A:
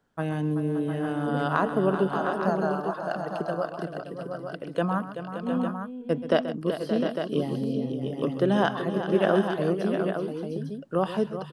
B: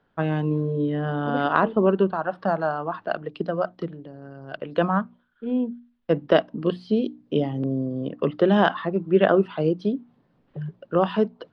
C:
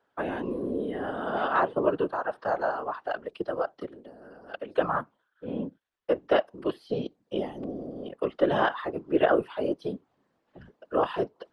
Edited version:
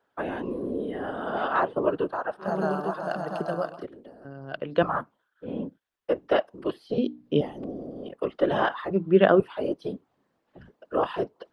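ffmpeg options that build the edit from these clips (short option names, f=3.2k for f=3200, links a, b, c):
-filter_complex "[1:a]asplit=3[a][b][c];[2:a]asplit=5[d][e][f][g][h];[d]atrim=end=2.61[i];[0:a]atrim=start=2.37:end=3.87[j];[e]atrim=start=3.63:end=4.252[k];[a]atrim=start=4.248:end=4.832[l];[f]atrim=start=4.828:end=6.982[m];[b]atrim=start=6.978:end=7.412[n];[g]atrim=start=7.408:end=8.912[o];[c]atrim=start=8.908:end=9.402[p];[h]atrim=start=9.398[q];[i][j]acrossfade=d=0.24:c1=tri:c2=tri[r];[r][k]acrossfade=d=0.24:c1=tri:c2=tri[s];[s][l]acrossfade=d=0.004:c1=hsin:c2=hsin[t];[t][m]acrossfade=d=0.004:c1=hsin:c2=hsin[u];[u][n]acrossfade=d=0.004:c1=hsin:c2=hsin[v];[v][o]acrossfade=d=0.004:c1=hsin:c2=hsin[w];[w][p]acrossfade=d=0.004:c1=hsin:c2=hsin[x];[x][q]acrossfade=d=0.004:c1=hsin:c2=hsin"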